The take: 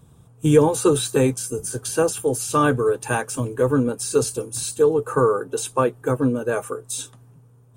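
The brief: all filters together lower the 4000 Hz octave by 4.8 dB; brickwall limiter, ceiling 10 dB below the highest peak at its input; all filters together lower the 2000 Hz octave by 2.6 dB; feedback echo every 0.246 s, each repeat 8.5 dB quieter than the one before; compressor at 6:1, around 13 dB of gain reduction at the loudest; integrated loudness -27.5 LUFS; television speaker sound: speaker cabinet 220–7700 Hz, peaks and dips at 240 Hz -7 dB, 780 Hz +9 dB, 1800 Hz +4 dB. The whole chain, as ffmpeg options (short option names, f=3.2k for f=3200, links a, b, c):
-af "equalizer=f=2k:t=o:g=-6,equalizer=f=4k:t=o:g=-4.5,acompressor=threshold=-23dB:ratio=6,alimiter=limit=-22dB:level=0:latency=1,highpass=f=220:w=0.5412,highpass=f=220:w=1.3066,equalizer=f=240:t=q:w=4:g=-7,equalizer=f=780:t=q:w=4:g=9,equalizer=f=1.8k:t=q:w=4:g=4,lowpass=f=7.7k:w=0.5412,lowpass=f=7.7k:w=1.3066,aecho=1:1:246|492|738|984:0.376|0.143|0.0543|0.0206,volume=4.5dB"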